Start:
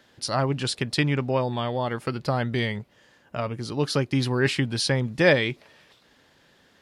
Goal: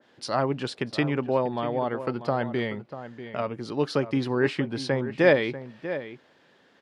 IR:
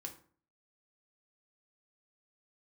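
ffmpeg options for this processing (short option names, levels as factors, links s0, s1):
-filter_complex "[0:a]highpass=310,aemphasis=mode=reproduction:type=bsi,asplit=2[s0][s1];[s1]adelay=641.4,volume=0.251,highshelf=f=4000:g=-14.4[s2];[s0][s2]amix=inputs=2:normalize=0,adynamicequalizer=threshold=0.00891:dfrequency=1800:dqfactor=0.7:tfrequency=1800:tqfactor=0.7:attack=5:release=100:ratio=0.375:range=3.5:mode=cutabove:tftype=highshelf"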